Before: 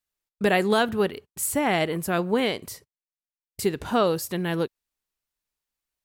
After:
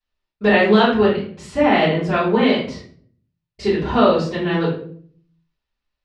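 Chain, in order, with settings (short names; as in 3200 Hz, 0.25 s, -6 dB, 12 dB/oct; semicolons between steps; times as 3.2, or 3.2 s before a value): LPF 4700 Hz 24 dB/oct; shoebox room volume 59 m³, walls mixed, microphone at 3.2 m; gain -6.5 dB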